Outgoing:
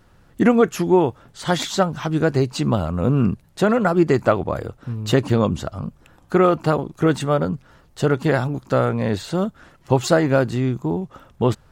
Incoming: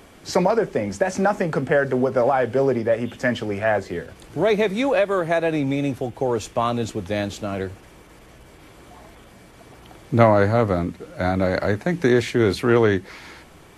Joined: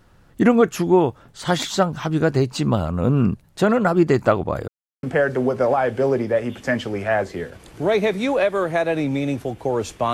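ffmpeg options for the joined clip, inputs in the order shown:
ffmpeg -i cue0.wav -i cue1.wav -filter_complex "[0:a]apad=whole_dur=10.13,atrim=end=10.13,asplit=2[link_01][link_02];[link_01]atrim=end=4.68,asetpts=PTS-STARTPTS,afade=type=out:start_time=4.676:duration=0.004:curve=hsin[link_03];[link_02]atrim=start=4.68:end=5.03,asetpts=PTS-STARTPTS,volume=0[link_04];[1:a]atrim=start=1.59:end=6.69,asetpts=PTS-STARTPTS,afade=type=in:duration=0.004:curve=hsin[link_05];[link_03][link_04][link_05]concat=n=3:v=0:a=1" out.wav

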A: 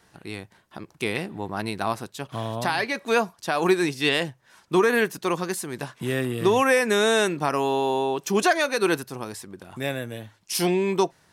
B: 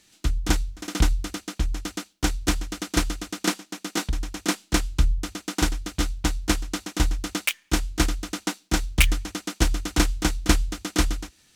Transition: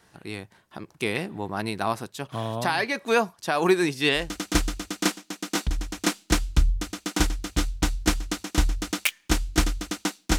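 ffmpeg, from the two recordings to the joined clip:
ffmpeg -i cue0.wav -i cue1.wav -filter_complex "[0:a]apad=whole_dur=10.38,atrim=end=10.38,atrim=end=4.33,asetpts=PTS-STARTPTS[link_01];[1:a]atrim=start=2.55:end=8.8,asetpts=PTS-STARTPTS[link_02];[link_01][link_02]acrossfade=duration=0.2:curve1=tri:curve2=tri" out.wav

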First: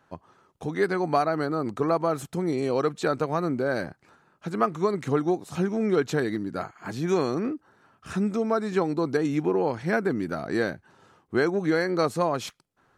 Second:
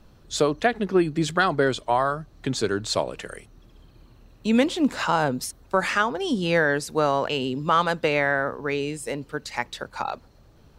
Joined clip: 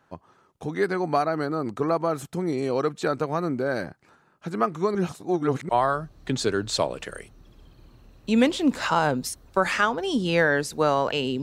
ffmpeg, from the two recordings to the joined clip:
ffmpeg -i cue0.wav -i cue1.wav -filter_complex "[0:a]apad=whole_dur=11.42,atrim=end=11.42,asplit=2[link_01][link_02];[link_01]atrim=end=4.952[link_03];[link_02]atrim=start=4.948:end=5.692,asetpts=PTS-STARTPTS,areverse[link_04];[1:a]atrim=start=1.858:end=7.59[link_05];[link_03][link_04]acrossfade=duration=0.004:curve1=hsin:curve2=hsin[link_06];[link_06][link_05]acrossfade=duration=0.004:curve1=hsin:curve2=hsin" out.wav

